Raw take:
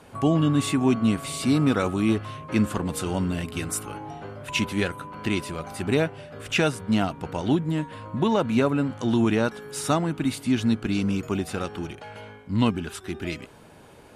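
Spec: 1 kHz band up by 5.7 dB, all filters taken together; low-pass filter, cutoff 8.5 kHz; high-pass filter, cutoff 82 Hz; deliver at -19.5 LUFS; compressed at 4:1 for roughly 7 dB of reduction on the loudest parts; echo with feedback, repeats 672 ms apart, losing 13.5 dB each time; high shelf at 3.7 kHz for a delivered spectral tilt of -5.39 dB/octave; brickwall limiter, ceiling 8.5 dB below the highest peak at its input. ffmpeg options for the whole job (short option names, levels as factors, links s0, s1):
-af "highpass=82,lowpass=8500,equalizer=f=1000:t=o:g=7.5,highshelf=f=3700:g=-4,acompressor=threshold=0.0631:ratio=4,alimiter=limit=0.112:level=0:latency=1,aecho=1:1:672|1344:0.211|0.0444,volume=3.55"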